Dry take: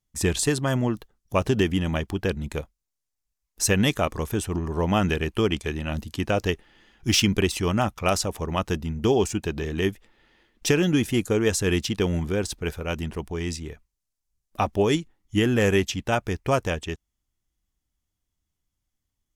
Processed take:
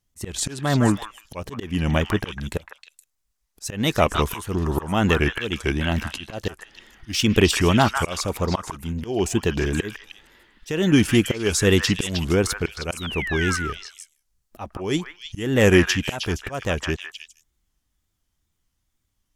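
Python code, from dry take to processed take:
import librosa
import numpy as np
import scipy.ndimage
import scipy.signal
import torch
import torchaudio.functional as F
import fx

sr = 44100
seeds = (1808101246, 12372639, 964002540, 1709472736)

p1 = fx.spec_paint(x, sr, seeds[0], shape='fall', start_s=12.97, length_s=0.6, low_hz=1100.0, high_hz=3800.0, level_db=-35.0)
p2 = fx.auto_swell(p1, sr, attack_ms=330.0)
p3 = fx.wow_flutter(p2, sr, seeds[1], rate_hz=2.1, depth_cents=140.0)
p4 = p3 + fx.echo_stepped(p3, sr, ms=156, hz=1400.0, octaves=1.4, feedback_pct=70, wet_db=-1.0, dry=0)
y = p4 * librosa.db_to_amplitude(6.0)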